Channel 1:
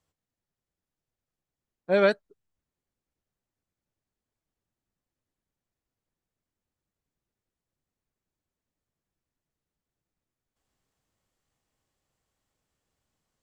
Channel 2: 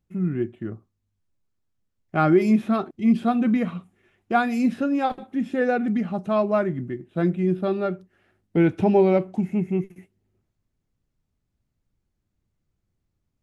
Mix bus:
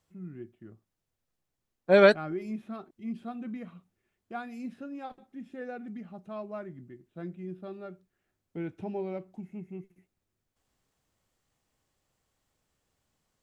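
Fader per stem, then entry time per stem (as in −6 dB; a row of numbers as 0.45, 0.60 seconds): +3.0, −17.5 decibels; 0.00, 0.00 seconds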